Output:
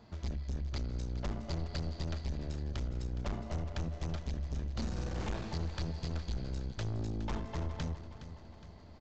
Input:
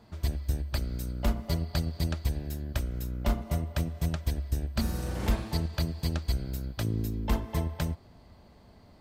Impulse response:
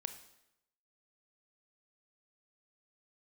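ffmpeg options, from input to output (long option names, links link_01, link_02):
-filter_complex "[0:a]aeval=exprs='(tanh(44.7*val(0)+0.4)-tanh(0.4))/44.7':channel_layout=same,asplit=2[link_01][link_02];[link_02]aecho=0:1:415|830|1245|1660|2075:0.224|0.119|0.0629|0.0333|0.0177[link_03];[link_01][link_03]amix=inputs=2:normalize=0,aresample=16000,aresample=44100"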